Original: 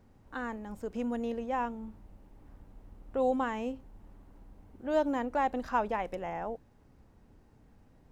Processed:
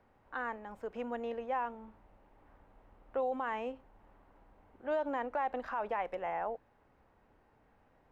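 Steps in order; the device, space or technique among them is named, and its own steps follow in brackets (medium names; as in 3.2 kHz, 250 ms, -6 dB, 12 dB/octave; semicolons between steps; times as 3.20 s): DJ mixer with the lows and highs turned down (three-band isolator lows -14 dB, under 470 Hz, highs -17 dB, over 3 kHz; peak limiter -28.5 dBFS, peak gain reduction 11.5 dB); trim +2.5 dB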